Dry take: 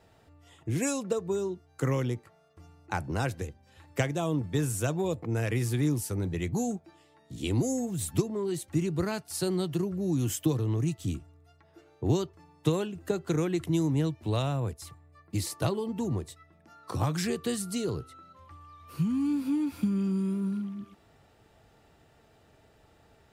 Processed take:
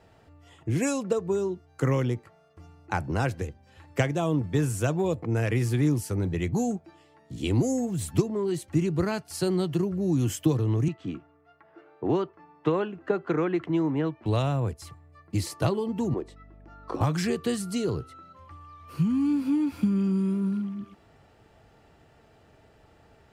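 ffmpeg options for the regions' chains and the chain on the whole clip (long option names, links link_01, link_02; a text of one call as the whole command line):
ffmpeg -i in.wav -filter_complex "[0:a]asettb=1/sr,asplit=3[link_01][link_02][link_03];[link_01]atrim=end=10.884[link_04];[link_02]atrim=start=10.88:end=14.26,asetpts=PTS-STARTPTS,afade=type=in:duration=0.004:curve=qsin,afade=type=out:start_time=3.376:duration=0.004:curve=qsin,highpass=220,lowpass=2500,equalizer=frequency=1300:width_type=o:width=1.4:gain=5[link_05];[link_03]atrim=start=14.256[link_06];[link_04][link_05]acrossfade=duration=0.004:curve1=hsin:curve2=qsin[link_07];[link_07][link_06]acrossfade=duration=0.004:curve1=qsin:curve2=hsin,asettb=1/sr,asplit=3[link_08][link_09][link_10];[link_08]atrim=end=16.144[link_11];[link_09]atrim=start=16.14:end=17.01,asetpts=PTS-STARTPTS,afade=type=in:duration=0.004:curve=qsin,afade=type=out:start_time=0.866:duration=0.004:curve=qsin,highpass=frequency=300:width=0.5412,highpass=frequency=300:width=1.3066,aemphasis=mode=reproduction:type=riaa,aeval=exprs='val(0)+0.00224*(sin(2*PI*50*n/s)+sin(2*PI*2*50*n/s)/2+sin(2*PI*3*50*n/s)/3+sin(2*PI*4*50*n/s)/4+sin(2*PI*5*50*n/s)/5)':channel_layout=same[link_12];[link_10]atrim=start=17.006[link_13];[link_11][link_12]acrossfade=duration=0.004:curve1=hsin:curve2=qsin[link_14];[link_14][link_13]acrossfade=duration=0.004:curve1=qsin:curve2=hsin,highshelf=frequency=6700:gain=-8.5,bandreject=frequency=3700:width=16,volume=3.5dB" out.wav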